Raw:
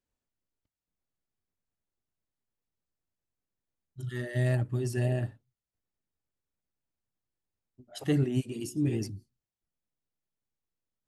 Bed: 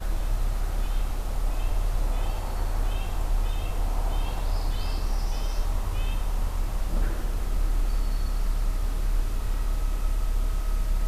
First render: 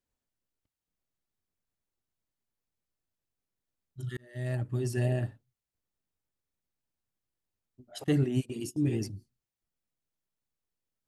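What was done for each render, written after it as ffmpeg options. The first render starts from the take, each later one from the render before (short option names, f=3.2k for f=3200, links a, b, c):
-filter_complex "[0:a]asettb=1/sr,asplit=3[a][b][c];[a]atrim=end=8.044[d];[b]atrim=start=8.04:end=9.16,asetpts=PTS-STARTPTS,afade=t=in:d=0.004:c=qsin,afade=t=out:st=1.116:d=0.004:c=qsin,agate=range=-17dB:threshold=-41dB:ratio=16:release=100:detection=peak[e];[c]atrim=start=9.156[f];[d][e]acrossfade=d=0.004:c1=hsin:c2=qsin[g];[g][f]acrossfade=d=0.004:c1=qsin:c2=hsin,asplit=2[h][i];[h]atrim=end=4.17,asetpts=PTS-STARTPTS,afade=t=out:st=4.166:d=0.004:c=hsin[j];[i]atrim=start=4.17,asetpts=PTS-STARTPTS,afade=t=in:d=0.64[k];[j][k]concat=n=2:v=0:a=1"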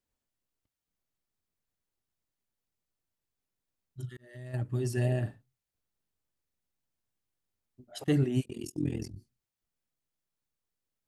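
-filter_complex "[0:a]asplit=3[a][b][c];[a]afade=t=out:st=4.05:d=0.02[d];[b]acompressor=threshold=-46dB:ratio=2.5:attack=3.2:release=140:knee=1:detection=peak,afade=t=in:st=4.05:d=0.02,afade=t=out:st=4.53:d=0.02[e];[c]afade=t=in:st=4.53:d=0.02[f];[d][e][f]amix=inputs=3:normalize=0,asettb=1/sr,asplit=3[g][h][i];[g]atrim=end=5.214[j];[h]atrim=start=5.21:end=7.84,asetpts=PTS-STARTPTS,afade=t=in:d=0.004:c=qsin,afade=t=out:st=2.626:d=0.004:c=qsin,asplit=2[k][l];[l]adelay=45,volume=-9dB[m];[k][m]amix=inputs=2:normalize=0,atrim=end_sample=115983[n];[i]atrim=start=7.836[o];[j][n]acrossfade=d=0.004:c1=hsin:c2=qsin[p];[p][o]acrossfade=d=0.004:c1=qsin:c2=hsin,asplit=3[q][r][s];[q]afade=t=out:st=8.43:d=0.02[t];[r]tremolo=f=42:d=0.919,afade=t=in:st=8.43:d=0.02,afade=t=out:st=9.16:d=0.02[u];[s]afade=t=in:st=9.16:d=0.02[v];[t][u][v]amix=inputs=3:normalize=0"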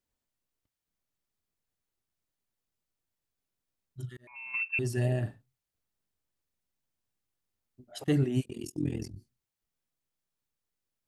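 -filter_complex "[0:a]asettb=1/sr,asplit=3[a][b][c];[a]atrim=end=4.274[d];[b]atrim=start=4.27:end=4.79,asetpts=PTS-STARTPTS,afade=t=in:d=0.004:c=qsin,afade=t=out:st=0.516:d=0.004:c=qsin,lowpass=f=2.4k:t=q:w=0.5098,lowpass=f=2.4k:t=q:w=0.6013,lowpass=f=2.4k:t=q:w=0.9,lowpass=f=2.4k:t=q:w=2.563,afreqshift=-2800[e];[c]atrim=start=4.786[f];[d][e]acrossfade=d=0.004:c1=hsin:c2=qsin[g];[g][f]acrossfade=d=0.004:c1=qsin:c2=hsin"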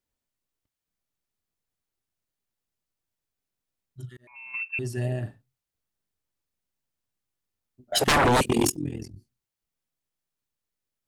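-filter_complex "[0:a]asettb=1/sr,asplit=3[a][b][c];[a]atrim=end=7.924[d];[b]atrim=start=7.92:end=8.76,asetpts=PTS-STARTPTS,afade=t=in:d=0.004:c=qsin,afade=t=out:st=0.836:d=0.004:c=qsin,aeval=exprs='0.158*sin(PI/2*7.94*val(0)/0.158)':c=same[e];[c]atrim=start=8.756[f];[d][e]acrossfade=d=0.004:c1=hsin:c2=qsin[g];[g][f]acrossfade=d=0.004:c1=qsin:c2=hsin"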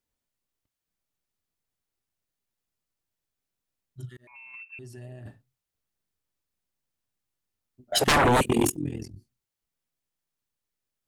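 -filter_complex "[0:a]asplit=3[a][b][c];[a]afade=t=out:st=4.24:d=0.02[d];[b]acompressor=threshold=-45dB:ratio=3:attack=3.2:release=140:knee=1:detection=peak,afade=t=in:st=4.24:d=0.02,afade=t=out:st=5.25:d=0.02[e];[c]afade=t=in:st=5.25:d=0.02[f];[d][e][f]amix=inputs=3:normalize=0,asettb=1/sr,asplit=3[g][h][i];[g]atrim=end=8.224[j];[h]atrim=start=8.22:end=8.86,asetpts=PTS-STARTPTS,afade=t=in:d=0.004:c=qsin,afade=t=out:st=0.636:d=0.004:c=qsin,equalizer=f=5.1k:t=o:w=0.6:g=-10[k];[i]atrim=start=8.856[l];[j][k]acrossfade=d=0.004:c1=hsin:c2=qsin[m];[m][l]acrossfade=d=0.004:c1=qsin:c2=hsin"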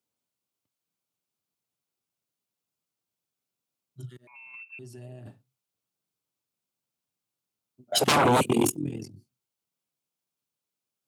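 -af "highpass=f=110:w=0.5412,highpass=f=110:w=1.3066,equalizer=f=1.8k:t=o:w=0.28:g=-9"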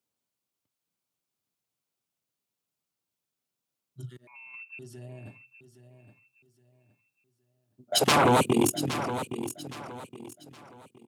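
-af "aecho=1:1:817|1634|2451:0.282|0.0902|0.0289"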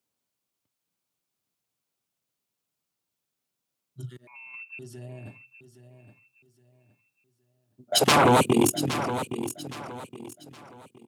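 -af "volume=2.5dB"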